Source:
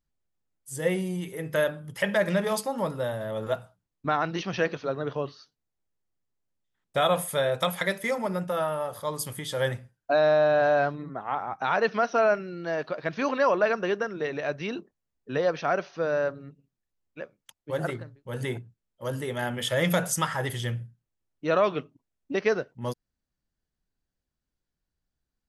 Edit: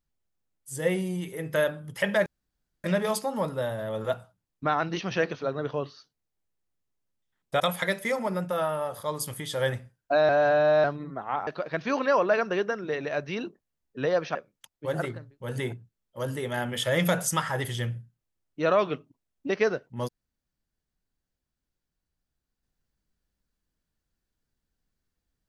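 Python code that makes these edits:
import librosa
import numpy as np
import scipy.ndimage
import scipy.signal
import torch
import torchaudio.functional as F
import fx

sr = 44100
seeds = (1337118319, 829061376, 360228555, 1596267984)

y = fx.edit(x, sr, fx.insert_room_tone(at_s=2.26, length_s=0.58),
    fx.cut(start_s=7.02, length_s=0.57),
    fx.reverse_span(start_s=10.28, length_s=0.55),
    fx.cut(start_s=11.46, length_s=1.33),
    fx.cut(start_s=15.67, length_s=1.53), tone=tone)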